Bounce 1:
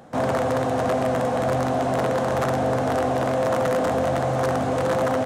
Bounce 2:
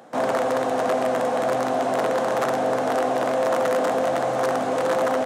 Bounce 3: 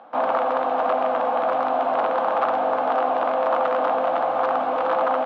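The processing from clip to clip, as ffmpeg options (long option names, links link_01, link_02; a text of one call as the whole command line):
ffmpeg -i in.wav -af "highpass=280,volume=1dB" out.wav
ffmpeg -i in.wav -af "highpass=310,equalizer=frequency=400:width_type=q:width=4:gain=-10,equalizer=frequency=840:width_type=q:width=4:gain=6,equalizer=frequency=1200:width_type=q:width=4:gain=6,equalizer=frequency=1900:width_type=q:width=4:gain=-7,lowpass=frequency=3200:width=0.5412,lowpass=frequency=3200:width=1.3066" out.wav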